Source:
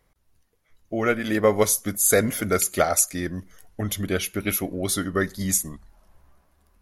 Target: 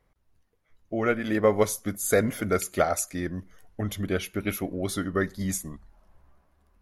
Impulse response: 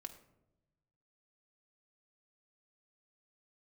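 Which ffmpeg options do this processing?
-af "highshelf=f=3.8k:g=-9.5,volume=-2dB"

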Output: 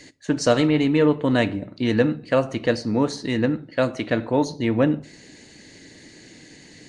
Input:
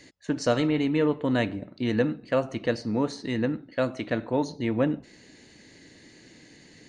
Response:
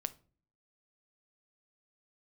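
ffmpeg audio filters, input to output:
-filter_complex "[0:a]asplit=2[a][b];[b]aemphasis=mode=production:type=50fm[c];[1:a]atrim=start_sample=2205[d];[c][d]afir=irnorm=-1:irlink=0,volume=-0.5dB[e];[a][e]amix=inputs=2:normalize=0" -ar 22050 -c:a nellymoser

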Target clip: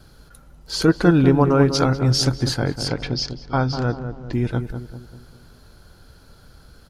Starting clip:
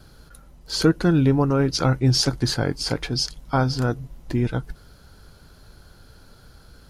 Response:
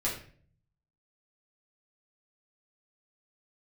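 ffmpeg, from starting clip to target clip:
-filter_complex "[0:a]asettb=1/sr,asplit=3[a][b][c];[a]atrim=end=0.884[d];[b]atrim=start=0.88:end=1.85,asetpts=PTS-STARTPTS,afade=t=in:d=0.004:c=qsin,afade=t=out:st=0.966:d=0.004:c=qsin,equalizer=f=930:w=0.32:g=5.5[e];[c]atrim=start=1.846[f];[d][e]acrossfade=d=0.004:c1=hsin:c2=qsin[g];[g][f]acrossfade=d=0.004:c1=qsin:c2=hsin,asettb=1/sr,asplit=3[h][i][j];[h]atrim=end=2.884[k];[i]atrim=start=2.88:end=4.33,asetpts=PTS-STARTPTS,afade=t=in:d=0.004:c=qsin,afade=t=out:st=1.446:d=0.004:c=qsin,lowpass=f=5.7k:w=0.5412,lowpass=f=5.7k:w=1.3066[l];[j]atrim=start=4.326[m];[k][l]acrossfade=d=0.004:c1=hsin:c2=qsin[n];[n][m]acrossfade=d=0.004:c1=qsin:c2=hsin,asplit=2[o][p];[p]adelay=196,lowpass=f=1.2k:p=1,volume=-8dB,asplit=2[q][r];[r]adelay=196,lowpass=f=1.2k:p=1,volume=0.48,asplit=2[s][t];[t]adelay=196,lowpass=f=1.2k:p=1,volume=0.48,asplit=2[u][v];[v]adelay=196,lowpass=f=1.2k:p=1,volume=0.48,asplit=2[w][x];[x]adelay=196,lowpass=f=1.2k:p=1,volume=0.48,asplit=2[y][z];[z]adelay=196,lowpass=f=1.2k:p=1,volume=0.48[aa];[q][s][u][w][y][aa]amix=inputs=6:normalize=0[ab];[o][ab]amix=inputs=2:normalize=0"

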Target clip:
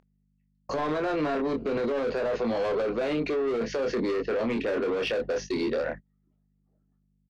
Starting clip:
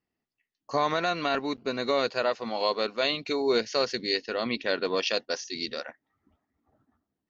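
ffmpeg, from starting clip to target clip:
-filter_complex "[0:a]acrossover=split=140|480|2200[a][b][c][d];[d]acompressor=threshold=-45dB:ratio=6[e];[a][b][c][e]amix=inputs=4:normalize=0,lowshelf=f=620:t=q:w=1.5:g=9.5,aeval=exprs='val(0)+0.00891*(sin(2*PI*50*n/s)+sin(2*PI*2*50*n/s)/2+sin(2*PI*3*50*n/s)/3+sin(2*PI*4*50*n/s)/4+sin(2*PI*5*50*n/s)/5)':c=same,acompressor=mode=upward:threshold=-37dB:ratio=2.5,asplit=2[f][g];[g]highpass=f=720:p=1,volume=18dB,asoftclip=type=tanh:threshold=-14.5dB[h];[f][h]amix=inputs=2:normalize=0,lowpass=f=2.5k:p=1,volume=-6dB,asplit=2[i][j];[j]adelay=26,volume=-6dB[k];[i][k]amix=inputs=2:normalize=0,alimiter=limit=-21.5dB:level=0:latency=1:release=12,agate=range=-27dB:threshold=-36dB:ratio=16:detection=peak"

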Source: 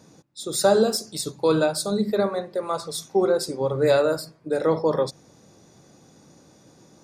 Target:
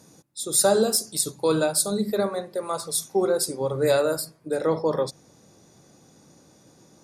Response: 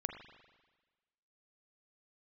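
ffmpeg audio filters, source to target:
-af "asetnsamples=n=441:p=0,asendcmd='4.55 equalizer g 6',equalizer=f=11k:t=o:w=0.97:g=14,volume=-2dB"

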